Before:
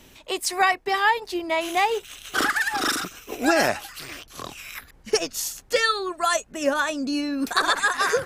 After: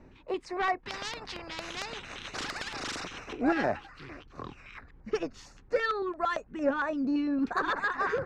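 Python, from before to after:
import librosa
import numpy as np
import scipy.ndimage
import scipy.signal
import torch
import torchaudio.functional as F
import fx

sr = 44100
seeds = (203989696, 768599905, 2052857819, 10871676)

y = fx.spacing_loss(x, sr, db_at_10k=40)
y = 10.0 ** (-18.0 / 20.0) * np.tanh(y / 10.0 ** (-18.0 / 20.0))
y = fx.filter_lfo_notch(y, sr, shape='square', hz=4.4, low_hz=640.0, high_hz=3200.0, q=1.3)
y = fx.spectral_comp(y, sr, ratio=4.0, at=(0.83, 3.33))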